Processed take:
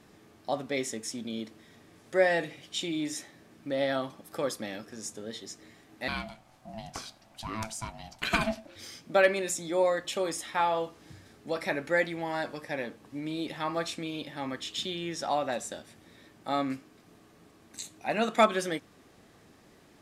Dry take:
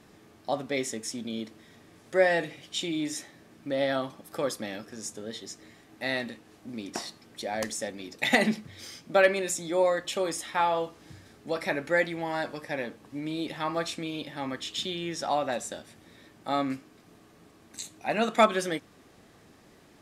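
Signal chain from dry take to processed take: 6.08–8.76 ring modulator 440 Hz; gain -1.5 dB

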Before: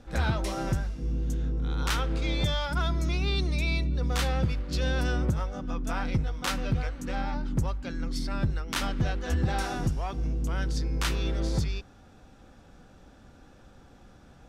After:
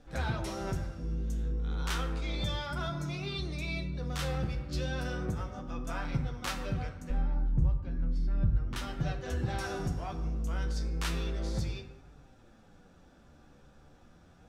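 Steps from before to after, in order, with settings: 7.1–8.76 RIAA curve playback; vocal rider within 4 dB 0.5 s; 2.89–3.39 bell 67 Hz -14.5 dB 0.41 oct; plate-style reverb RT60 1.2 s, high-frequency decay 0.45×, DRR 5.5 dB; flange 0.33 Hz, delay 6.7 ms, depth 8 ms, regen +47%; gain -6 dB

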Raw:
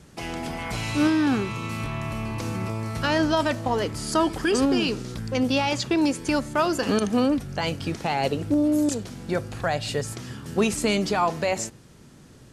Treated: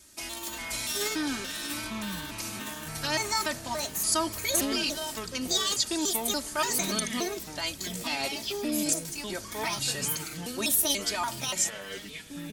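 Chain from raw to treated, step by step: trilling pitch shifter +5.5 st, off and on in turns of 0.288 s; notch 2900 Hz, Q 22; comb 3.2 ms, depth 85%; echoes that change speed 0.274 s, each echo -6 st, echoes 3, each echo -6 dB; pre-emphasis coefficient 0.9; gain +4.5 dB

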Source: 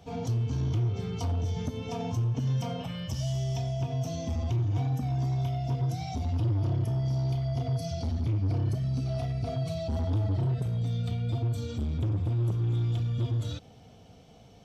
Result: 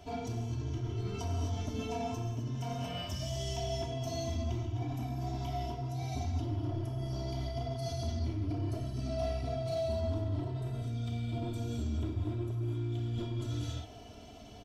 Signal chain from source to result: non-linear reverb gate 0.28 s flat, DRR -0.5 dB; reverse; compressor 6:1, threshold -32 dBFS, peak gain reduction 12.5 dB; reverse; comb 3 ms, depth 73%

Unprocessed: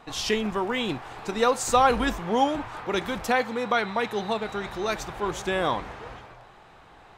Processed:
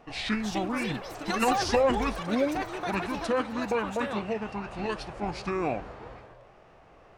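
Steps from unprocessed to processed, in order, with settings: formant shift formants -6 st; echoes that change speed 0.353 s, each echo +7 st, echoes 3, each echo -6 dB; gain -3.5 dB

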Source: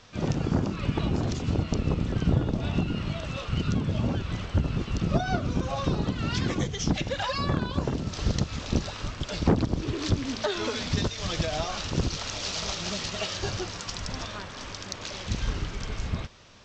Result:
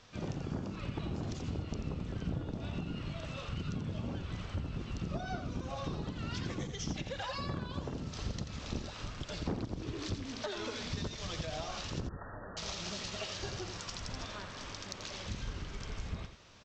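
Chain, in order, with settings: compressor 2:1, threshold -33 dBFS, peak gain reduction 9 dB; 12–12.57 brick-wall FIR low-pass 1900 Hz; on a send: echo 86 ms -8.5 dB; on the sum: gain -6 dB

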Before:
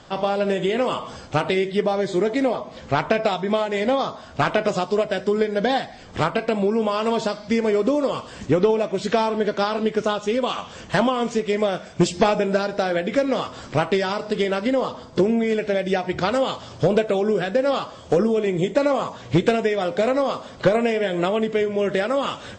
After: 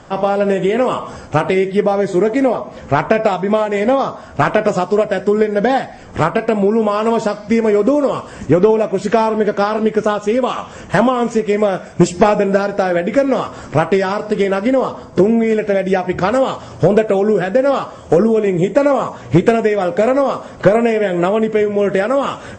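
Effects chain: bell 3900 Hz -11.5 dB 0.91 oct; gain +7 dB

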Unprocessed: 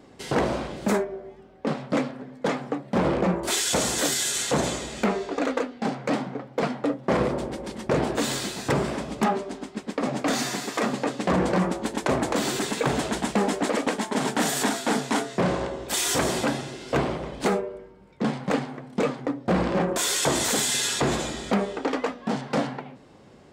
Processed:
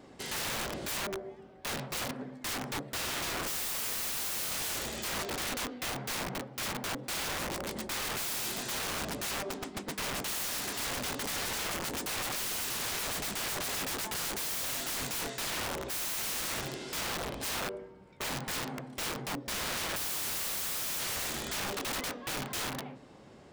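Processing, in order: notches 50/100/150/200/250/300/350/400/450/500 Hz; wrapped overs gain 28 dB; gain -2 dB

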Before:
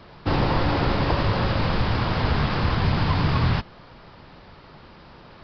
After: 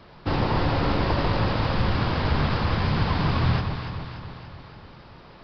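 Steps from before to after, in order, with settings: echo with dull and thin repeats by turns 0.145 s, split 1100 Hz, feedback 75%, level -5 dB; gain -2.5 dB

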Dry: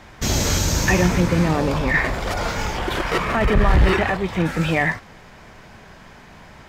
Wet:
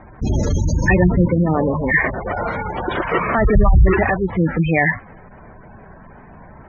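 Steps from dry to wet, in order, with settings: spectral gate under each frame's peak -15 dB strong; low-pass opened by the level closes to 1300 Hz, open at -11.5 dBFS; 1.27–3.39 HPF 130 Hz 6 dB/oct; gain +4 dB

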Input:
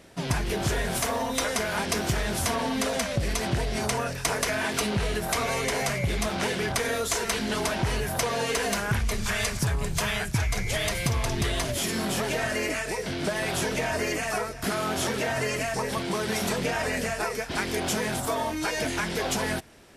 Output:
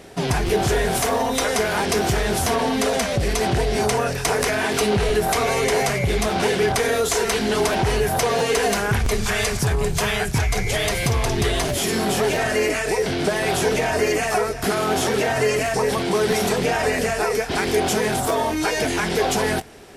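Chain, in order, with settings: in parallel at +3 dB: limiter -24 dBFS, peak gain reduction 10.5 dB; on the sum: small resonant body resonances 420/750 Hz, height 8 dB, ringing for 45 ms; crackling interface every 0.66 s, samples 512, repeat, from 0.46

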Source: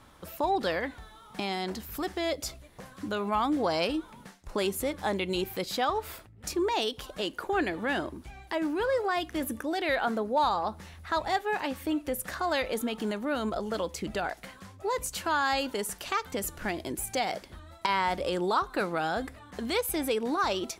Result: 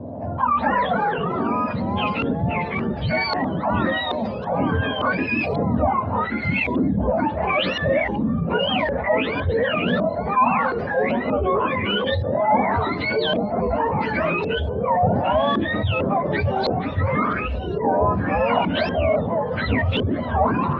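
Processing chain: spectrum mirrored in octaves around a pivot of 960 Hz; thirty-one-band EQ 250 Hz +8 dB, 400 Hz -5 dB, 630 Hz +12 dB, 1000 Hz +6 dB, 4000 Hz +9 dB; in parallel at -8 dB: soft clip -32 dBFS, distortion -5 dB; on the sum: LFO low-pass saw up 0.9 Hz 410–4000 Hz; echoes that change speed 0.15 s, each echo -3 st, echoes 2; air absorption 71 m; fast leveller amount 50%; gain -3.5 dB

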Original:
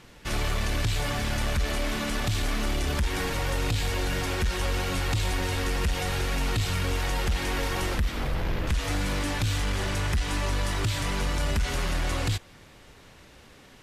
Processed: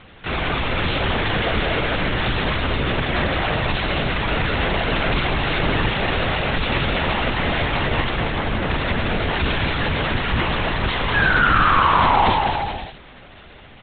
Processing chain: low shelf 99 Hz -11.5 dB; painted sound fall, 11.14–12.3, 760–1700 Hz -27 dBFS; bouncing-ball echo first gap 0.2 s, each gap 0.75×, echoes 5; LPC vocoder at 8 kHz whisper; gain +8.5 dB

